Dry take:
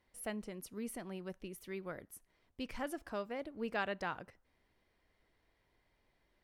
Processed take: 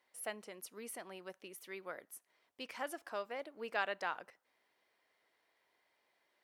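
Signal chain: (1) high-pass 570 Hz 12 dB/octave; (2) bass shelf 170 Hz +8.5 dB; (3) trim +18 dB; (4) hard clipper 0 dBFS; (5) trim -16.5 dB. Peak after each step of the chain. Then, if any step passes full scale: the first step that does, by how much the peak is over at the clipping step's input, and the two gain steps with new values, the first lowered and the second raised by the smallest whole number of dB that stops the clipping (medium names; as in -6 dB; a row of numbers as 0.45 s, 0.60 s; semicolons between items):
-22.5 dBFS, -22.5 dBFS, -4.5 dBFS, -4.5 dBFS, -21.0 dBFS; nothing clips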